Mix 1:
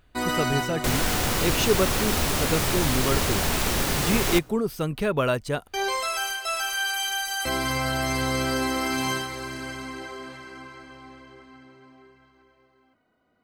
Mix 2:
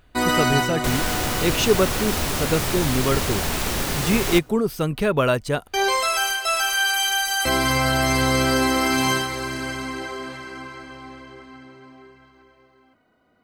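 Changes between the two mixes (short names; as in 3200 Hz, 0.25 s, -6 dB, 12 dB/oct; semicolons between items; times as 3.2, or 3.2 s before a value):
speech +4.0 dB; first sound +6.0 dB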